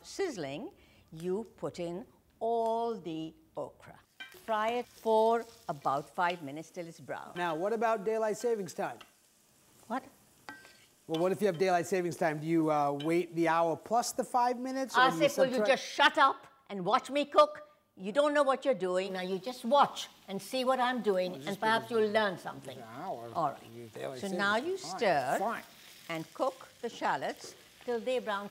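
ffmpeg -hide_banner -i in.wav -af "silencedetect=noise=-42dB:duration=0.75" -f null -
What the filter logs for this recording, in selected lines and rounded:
silence_start: 9.02
silence_end: 9.90 | silence_duration: 0.88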